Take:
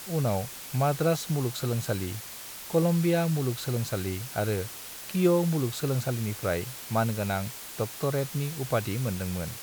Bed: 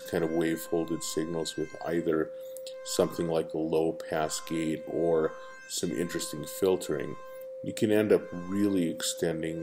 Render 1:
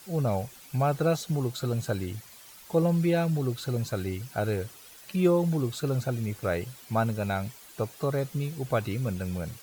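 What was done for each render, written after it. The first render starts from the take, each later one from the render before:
broadband denoise 11 dB, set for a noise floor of −42 dBFS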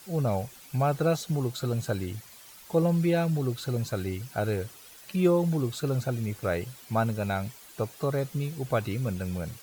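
no processing that can be heard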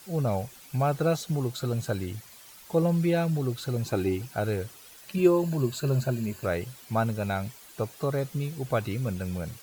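0:00.75–0:01.52: one scale factor per block 7 bits
0:03.86–0:04.26: hollow resonant body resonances 330/800/2,500 Hz, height 10 dB, ringing for 20 ms
0:05.17–0:06.46: EQ curve with evenly spaced ripples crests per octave 1.4, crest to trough 9 dB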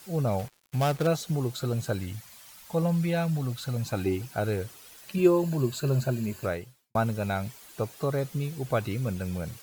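0:00.39–0:01.07: gap after every zero crossing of 0.15 ms
0:01.99–0:04.06: parametric band 380 Hz −13.5 dB 0.44 octaves
0:06.45–0:06.95: fade out quadratic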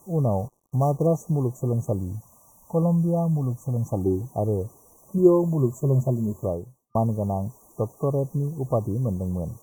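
brick-wall band-stop 1,200–5,700 Hz
tilt shelving filter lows +5 dB, about 1,400 Hz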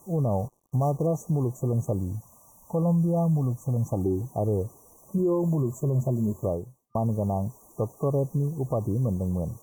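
brickwall limiter −17.5 dBFS, peak gain reduction 12 dB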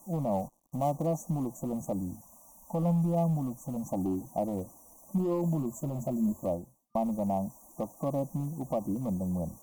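hard clipping −19.5 dBFS, distortion −24 dB
phaser with its sweep stopped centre 420 Hz, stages 6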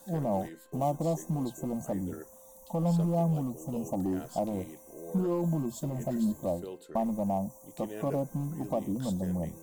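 mix in bed −16.5 dB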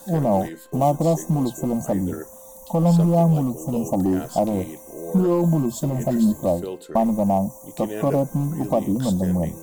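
level +10.5 dB

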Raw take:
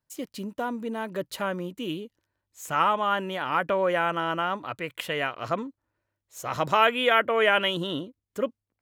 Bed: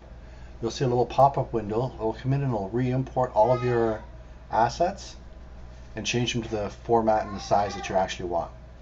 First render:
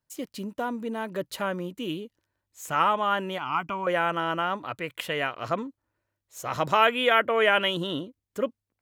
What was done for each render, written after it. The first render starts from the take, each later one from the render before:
0:03.38–0:03.87: phaser with its sweep stopped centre 2,600 Hz, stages 8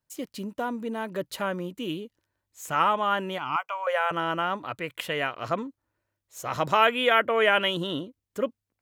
0:03.56–0:04.11: elliptic high-pass filter 510 Hz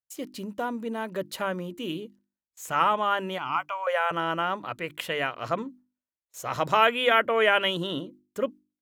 noise gate with hold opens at −44 dBFS
mains-hum notches 50/100/150/200/250/300/350 Hz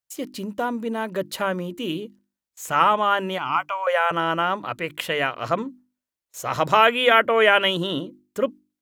level +5 dB
brickwall limiter −3 dBFS, peak gain reduction 1.5 dB

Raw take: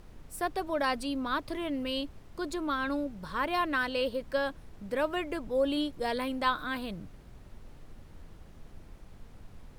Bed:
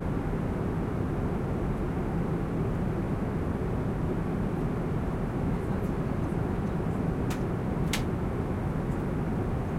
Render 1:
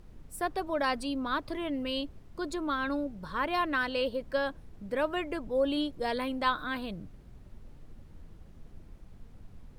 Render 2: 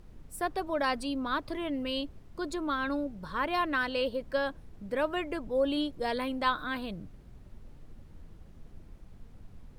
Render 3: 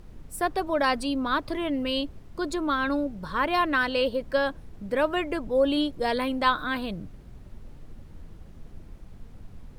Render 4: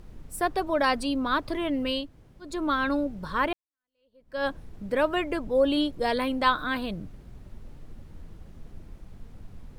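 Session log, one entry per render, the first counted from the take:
broadband denoise 6 dB, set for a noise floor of −52 dBFS
no processing that can be heard
level +5.5 dB
0:02.03–0:02.51: fill with room tone, crossfade 0.24 s; 0:03.53–0:04.45: fade in exponential

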